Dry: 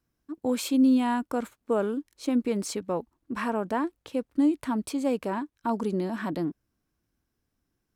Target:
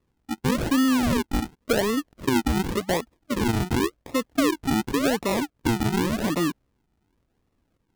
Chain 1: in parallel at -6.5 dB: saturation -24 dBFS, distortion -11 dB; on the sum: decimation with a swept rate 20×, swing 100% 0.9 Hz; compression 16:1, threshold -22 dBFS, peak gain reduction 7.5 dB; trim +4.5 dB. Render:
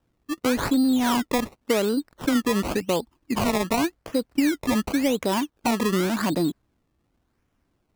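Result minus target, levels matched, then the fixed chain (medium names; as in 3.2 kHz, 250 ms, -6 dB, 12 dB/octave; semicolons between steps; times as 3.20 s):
decimation with a swept rate: distortion -9 dB; saturation: distortion -6 dB
in parallel at -6.5 dB: saturation -33 dBFS, distortion -5 dB; on the sum: decimation with a swept rate 55×, swing 100% 0.9 Hz; compression 16:1, threshold -22 dBFS, peak gain reduction 6.5 dB; trim +4.5 dB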